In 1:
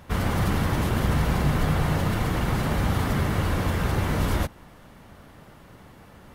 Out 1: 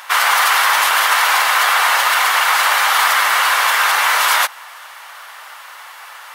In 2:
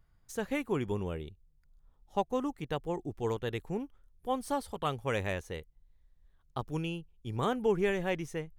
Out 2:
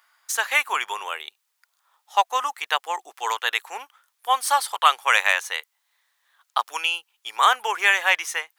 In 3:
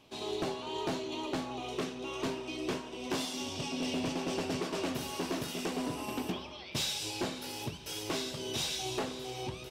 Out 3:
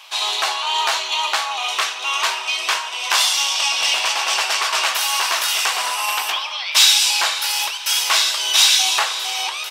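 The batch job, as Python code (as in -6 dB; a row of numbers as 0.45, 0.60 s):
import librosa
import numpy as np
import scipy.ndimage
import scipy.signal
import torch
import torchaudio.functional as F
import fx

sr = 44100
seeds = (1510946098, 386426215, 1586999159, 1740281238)

y = scipy.signal.sosfilt(scipy.signal.butter(4, 950.0, 'highpass', fs=sr, output='sos'), x)
y = librosa.util.normalize(y) * 10.0 ** (-1.5 / 20.0)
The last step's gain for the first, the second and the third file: +20.0, +20.0, +22.5 dB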